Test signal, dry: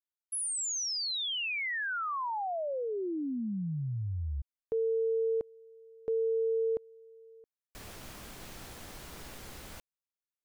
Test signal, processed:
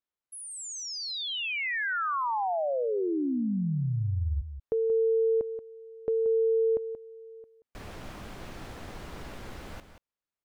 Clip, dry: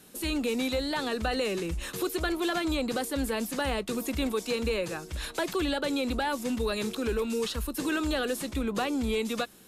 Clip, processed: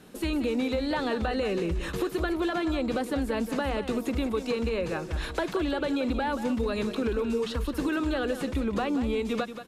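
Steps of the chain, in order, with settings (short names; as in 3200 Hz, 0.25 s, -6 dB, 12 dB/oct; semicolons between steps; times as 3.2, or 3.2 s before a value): LPF 1900 Hz 6 dB/oct; compressor, threshold -31 dBFS; echo 0.18 s -10.5 dB; gain +6 dB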